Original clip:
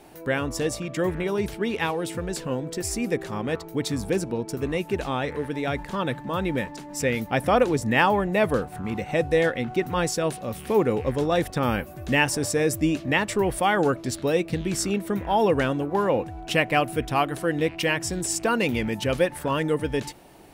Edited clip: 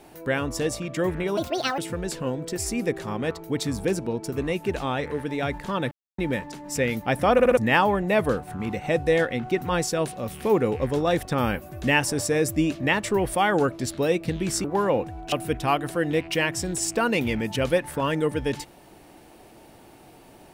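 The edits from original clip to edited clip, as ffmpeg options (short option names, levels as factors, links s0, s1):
-filter_complex "[0:a]asplit=11[s0][s1][s2][s3][s4][s5][s6][s7][s8][s9][s10];[s0]atrim=end=1.374[s11];[s1]atrim=start=1.37:end=2.03,asetpts=PTS-STARTPTS,asetrate=70560,aresample=44100,atrim=end_sample=18191,asetpts=PTS-STARTPTS[s12];[s2]atrim=start=2.026:end=6.16,asetpts=PTS-STARTPTS,afade=t=out:st=4.13:d=0.004:c=hsin[s13];[s3]atrim=start=6.16:end=6.43,asetpts=PTS-STARTPTS,volume=0[s14];[s4]atrim=start=6.43:end=7.642,asetpts=PTS-STARTPTS,afade=t=in:d=0.004:c=hsin[s15];[s5]atrim=start=7.578:end=7.642[s16];[s6]atrim=start=7.578:end=7.642[s17];[s7]atrim=start=7.578:end=7.642[s18];[s8]atrim=start=7.818:end=14.892[s19];[s9]atrim=start=15.838:end=16.522[s20];[s10]atrim=start=16.798[s21];[s11][s12]acrossfade=d=0.004:c1=hsin:c2=hsin[s22];[s13][s14][s15]concat=n=3:v=0:a=1[s23];[s22][s23]acrossfade=d=0.004:c1=hsin:c2=hsin[s24];[s24][s16]acrossfade=d=0.004:c1=hsin:c2=hsin[s25];[s25][s17]acrossfade=d=0.004:c1=hsin:c2=hsin[s26];[s26][s18]acrossfade=d=0.004:c1=hsin:c2=hsin[s27];[s27][s19]acrossfade=d=0.004:c1=hsin:c2=hsin[s28];[s28][s20]acrossfade=d=0.004:c1=hsin:c2=hsin[s29];[s29][s21]acrossfade=d=0.004:c1=hsin:c2=hsin"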